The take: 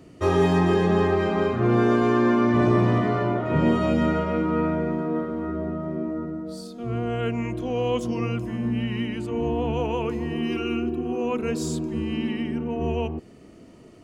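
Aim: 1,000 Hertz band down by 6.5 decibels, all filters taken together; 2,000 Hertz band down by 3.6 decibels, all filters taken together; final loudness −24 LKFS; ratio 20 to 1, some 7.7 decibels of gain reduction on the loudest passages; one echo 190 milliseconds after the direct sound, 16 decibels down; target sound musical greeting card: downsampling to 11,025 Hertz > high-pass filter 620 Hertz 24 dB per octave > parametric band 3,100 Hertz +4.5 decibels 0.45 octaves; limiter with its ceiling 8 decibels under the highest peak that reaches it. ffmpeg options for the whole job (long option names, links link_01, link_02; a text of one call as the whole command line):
ffmpeg -i in.wav -af "equalizer=frequency=1000:width_type=o:gain=-7.5,equalizer=frequency=2000:width_type=o:gain=-3,acompressor=threshold=-24dB:ratio=20,alimiter=level_in=1dB:limit=-24dB:level=0:latency=1,volume=-1dB,aecho=1:1:190:0.158,aresample=11025,aresample=44100,highpass=frequency=620:width=0.5412,highpass=frequency=620:width=1.3066,equalizer=frequency=3100:width_type=o:width=0.45:gain=4.5,volume=19.5dB" out.wav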